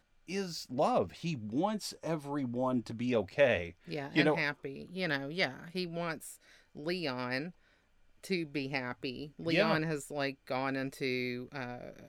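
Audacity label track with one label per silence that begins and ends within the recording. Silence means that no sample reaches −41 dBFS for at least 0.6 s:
7.490000	8.240000	silence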